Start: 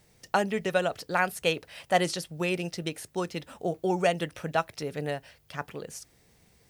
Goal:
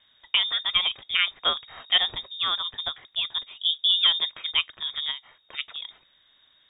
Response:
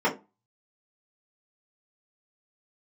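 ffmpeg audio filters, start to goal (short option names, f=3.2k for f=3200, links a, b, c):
-filter_complex "[0:a]asettb=1/sr,asplit=3[a][b][c];[a]atrim=end=1.584[d];[b]atrim=start=1.58:end=2.56,asetpts=PTS-STARTPTS,afade=t=in:d=0.004:c=qsin,afade=t=out:st=0.976:d=0.004:c=qsin,aeval=exprs='val(0)+0.00224*(sin(2*PI*50*n/s)+sin(2*PI*2*50*n/s)/2+sin(2*PI*3*50*n/s)/3+sin(2*PI*4*50*n/s)/4+sin(2*PI*5*50*n/s)/5)':c=same[e];[c]atrim=start=2.556[f];[d][e]acrossfade=d=0.004:c1=hsin:c2=qsin[g];[g][f]acrossfade=d=0.004:c1=qsin:c2=hsin,asettb=1/sr,asplit=3[h][i][j];[h]atrim=end=3.274[k];[i]atrim=start=3.27:end=4.31,asetpts=PTS-STARTPTS,afade=t=in:d=0.004:c=qsin,afade=t=out:st=1.036:d=0.004:c=qsin,tiltshelf=f=900:g=4.5[l];[j]atrim=start=4.306[m];[k][l]acrossfade=d=0.004:c1=hsin:c2=qsin[n];[n][m]acrossfade=d=0.004:c1=qsin:c2=hsin,asettb=1/sr,asplit=3[o][p][q];[o]atrim=end=5.114[r];[p]atrim=start=5.11:end=5.57,asetpts=PTS-STARTPTS,afade=t=in:d=0.004:c=qsin,afade=t=out:st=0.456:d=0.004:c=qsin,acompressor=threshold=-44dB:ratio=1.5[s];[q]atrim=start=5.566[t];[r][s]acrossfade=d=0.004:c1=hsin:c2=qsin[u];[u][t]acrossfade=d=0.004:c1=qsin:c2=hsin,lowpass=f=3.2k:t=q:w=0.5098,lowpass=f=3.2k:t=q:w=0.6013,lowpass=f=3.2k:t=q:w=0.9,lowpass=f=3.2k:t=q:w=2.563,afreqshift=-3800,lowshelf=f=300:g=9,volume=2dB"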